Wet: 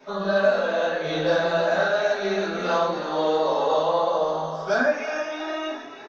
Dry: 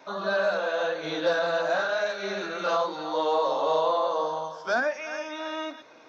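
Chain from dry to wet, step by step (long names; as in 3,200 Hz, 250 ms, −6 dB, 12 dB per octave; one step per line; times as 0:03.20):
low-shelf EQ 180 Hz +9 dB
echo with shifted repeats 317 ms, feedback 59%, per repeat +48 Hz, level −13 dB
rectangular room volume 43 cubic metres, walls mixed, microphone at 1.6 metres
level −6 dB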